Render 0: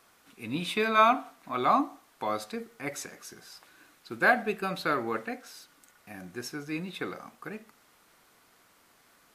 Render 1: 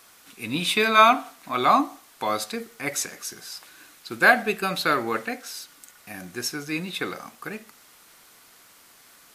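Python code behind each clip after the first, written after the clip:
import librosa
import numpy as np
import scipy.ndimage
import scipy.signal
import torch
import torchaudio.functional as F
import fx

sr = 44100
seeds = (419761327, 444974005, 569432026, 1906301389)

y = fx.high_shelf(x, sr, hz=2300.0, db=9.0)
y = y * 10.0 ** (4.0 / 20.0)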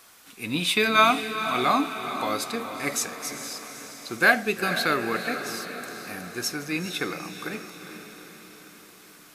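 y = fx.dynamic_eq(x, sr, hz=900.0, q=1.3, threshold_db=-33.0, ratio=4.0, max_db=-6)
y = fx.echo_diffused(y, sr, ms=460, feedback_pct=57, wet_db=-9.5)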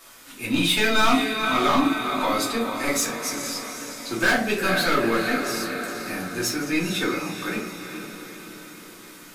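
y = 10.0 ** (-21.5 / 20.0) * np.tanh(x / 10.0 ** (-21.5 / 20.0))
y = fx.room_shoebox(y, sr, seeds[0], volume_m3=160.0, walls='furnished', distance_m=2.7)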